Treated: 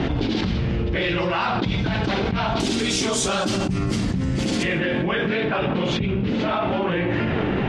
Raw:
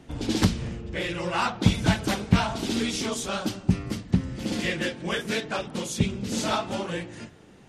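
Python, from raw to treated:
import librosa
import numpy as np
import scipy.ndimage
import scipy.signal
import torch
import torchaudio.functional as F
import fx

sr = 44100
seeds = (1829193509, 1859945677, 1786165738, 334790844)

y = fx.lowpass(x, sr, hz=fx.steps((0.0, 4300.0), (2.6, 9700.0), (4.63, 3000.0)), slope=24)
y = fx.rev_double_slope(y, sr, seeds[0], early_s=0.48, late_s=2.2, knee_db=-26, drr_db=9.0)
y = fx.env_flatten(y, sr, amount_pct=100)
y = y * 10.0 ** (-8.5 / 20.0)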